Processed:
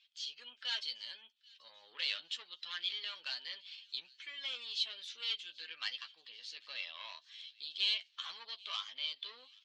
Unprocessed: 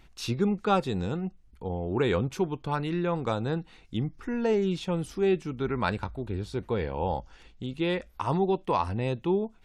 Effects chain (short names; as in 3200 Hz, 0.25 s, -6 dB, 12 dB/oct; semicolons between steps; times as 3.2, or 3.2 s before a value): bin magnitudes rounded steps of 15 dB; bell 3300 Hz +5 dB 2.1 oct; AGC gain up to 10.5 dB; pitch shift +3 st; soft clip -12.5 dBFS, distortion -14 dB; ladder band-pass 3900 Hz, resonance 50%; air absorption 90 m; doubler 12 ms -7.5 dB; thin delay 0.786 s, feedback 48%, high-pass 2900 Hz, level -22 dB; gain +2 dB